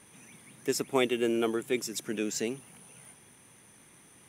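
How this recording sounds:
background noise floor −58 dBFS
spectral slope −3.5 dB per octave

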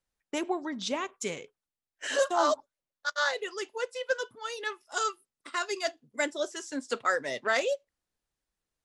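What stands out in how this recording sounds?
background noise floor −92 dBFS
spectral slope −1.5 dB per octave

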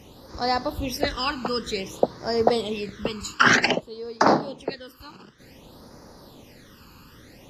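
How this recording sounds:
phaser sweep stages 12, 0.54 Hz, lowest notch 610–3,000 Hz
AAC

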